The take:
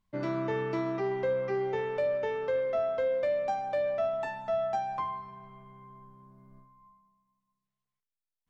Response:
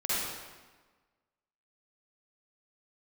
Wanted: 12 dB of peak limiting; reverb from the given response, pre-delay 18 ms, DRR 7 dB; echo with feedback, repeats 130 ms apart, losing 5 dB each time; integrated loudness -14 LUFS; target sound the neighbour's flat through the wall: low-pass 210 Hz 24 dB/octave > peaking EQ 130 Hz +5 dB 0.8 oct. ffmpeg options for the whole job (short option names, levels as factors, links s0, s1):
-filter_complex "[0:a]alimiter=level_in=2.66:limit=0.0631:level=0:latency=1,volume=0.376,aecho=1:1:130|260|390|520|650|780|910:0.562|0.315|0.176|0.0988|0.0553|0.031|0.0173,asplit=2[s0][s1];[1:a]atrim=start_sample=2205,adelay=18[s2];[s1][s2]afir=irnorm=-1:irlink=0,volume=0.158[s3];[s0][s3]amix=inputs=2:normalize=0,lowpass=f=210:w=0.5412,lowpass=f=210:w=1.3066,equalizer=f=130:t=o:w=0.8:g=5,volume=31.6"